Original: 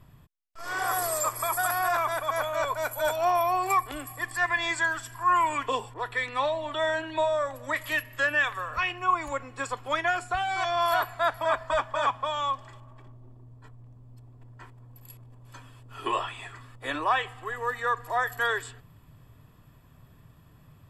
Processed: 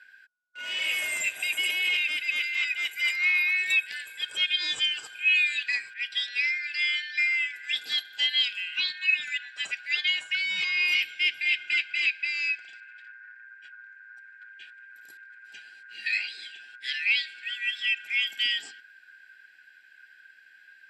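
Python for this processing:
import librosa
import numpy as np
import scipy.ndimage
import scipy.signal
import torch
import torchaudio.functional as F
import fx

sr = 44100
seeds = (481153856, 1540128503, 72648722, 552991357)

y = fx.band_shuffle(x, sr, order='4123')
y = fx.bandpass_edges(y, sr, low_hz=170.0, high_hz=7100.0)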